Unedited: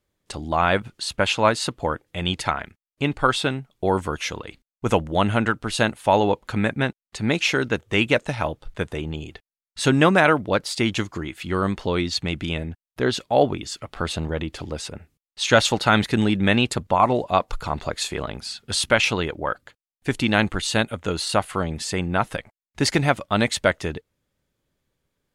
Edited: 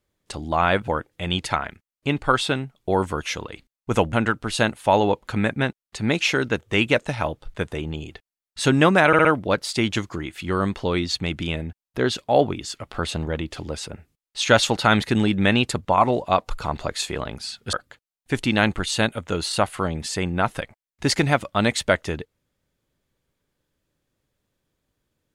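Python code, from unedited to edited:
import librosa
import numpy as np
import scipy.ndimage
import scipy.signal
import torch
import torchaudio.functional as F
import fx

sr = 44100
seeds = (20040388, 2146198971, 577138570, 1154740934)

y = fx.edit(x, sr, fx.cut(start_s=0.88, length_s=0.95),
    fx.cut(start_s=5.08, length_s=0.25),
    fx.stutter(start_s=10.27, slice_s=0.06, count=4),
    fx.cut(start_s=18.75, length_s=0.74), tone=tone)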